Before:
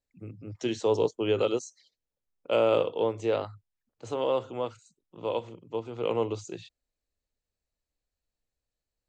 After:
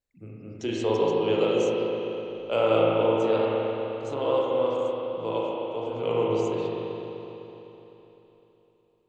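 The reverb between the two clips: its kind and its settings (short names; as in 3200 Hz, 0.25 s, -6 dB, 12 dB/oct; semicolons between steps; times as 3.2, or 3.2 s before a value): spring tank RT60 3.6 s, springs 36/42 ms, chirp 45 ms, DRR -5 dB; gain -1.5 dB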